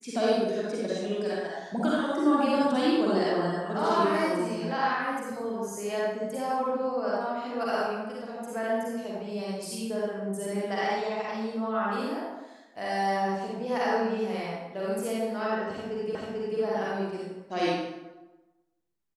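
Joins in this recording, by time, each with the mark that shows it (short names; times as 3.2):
16.15 repeat of the last 0.44 s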